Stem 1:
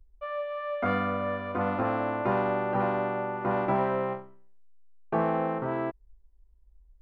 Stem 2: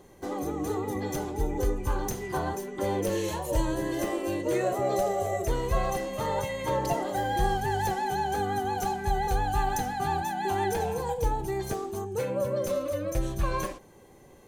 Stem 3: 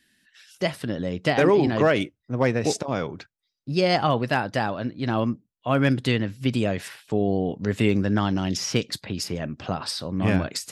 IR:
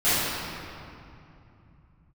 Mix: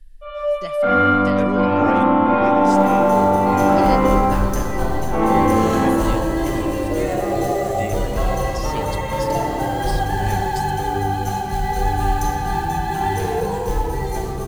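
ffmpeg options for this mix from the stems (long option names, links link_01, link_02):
-filter_complex "[0:a]aecho=1:1:3.7:1,asoftclip=type=tanh:threshold=-15dB,volume=-5dB,asplit=2[link_01][link_02];[link_02]volume=-4.5dB[link_03];[1:a]acrusher=bits=5:mode=log:mix=0:aa=0.000001,adelay=2450,volume=0.5dB,asplit=2[link_04][link_05];[link_05]volume=-14.5dB[link_06];[2:a]highshelf=frequency=8200:gain=10.5,volume=-10.5dB[link_07];[3:a]atrim=start_sample=2205[link_08];[link_03][link_06]amix=inputs=2:normalize=0[link_09];[link_09][link_08]afir=irnorm=-1:irlink=0[link_10];[link_01][link_04][link_07][link_10]amix=inputs=4:normalize=0"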